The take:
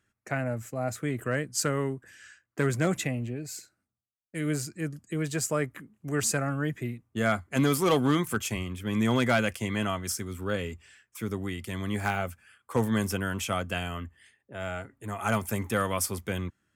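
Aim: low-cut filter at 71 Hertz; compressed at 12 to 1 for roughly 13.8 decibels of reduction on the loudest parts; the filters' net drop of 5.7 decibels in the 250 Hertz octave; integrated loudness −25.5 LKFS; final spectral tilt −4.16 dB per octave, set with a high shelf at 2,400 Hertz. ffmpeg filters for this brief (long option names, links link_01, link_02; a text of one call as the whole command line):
ffmpeg -i in.wav -af "highpass=71,equalizer=frequency=250:width_type=o:gain=-7.5,highshelf=frequency=2400:gain=4.5,acompressor=threshold=-34dB:ratio=12,volume=13.5dB" out.wav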